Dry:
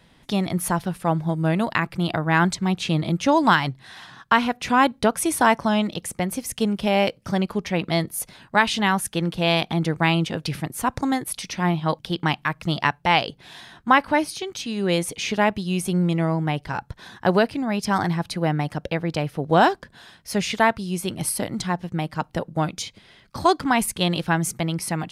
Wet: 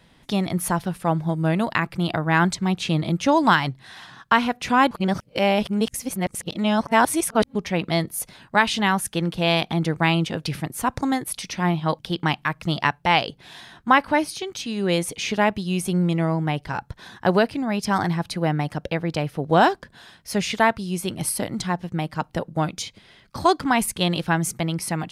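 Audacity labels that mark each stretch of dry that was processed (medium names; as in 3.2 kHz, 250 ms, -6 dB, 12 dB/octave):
4.910000	7.550000	reverse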